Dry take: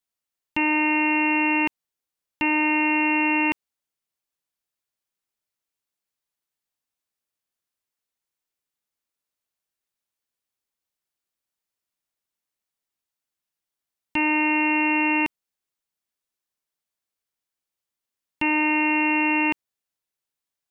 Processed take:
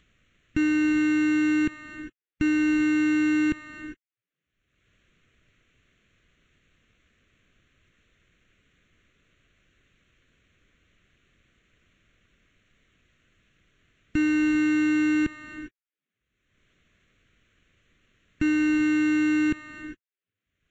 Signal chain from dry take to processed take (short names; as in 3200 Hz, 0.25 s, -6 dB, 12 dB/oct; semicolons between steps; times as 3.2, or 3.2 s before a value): half-waves squared off; sample leveller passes 5; air absorption 79 m; non-linear reverb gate 0.43 s rising, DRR 10.5 dB; upward compressor, threshold -26 dBFS; low shelf 180 Hz +12 dB; fixed phaser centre 2100 Hz, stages 4; gain -7.5 dB; Vorbis 64 kbps 16000 Hz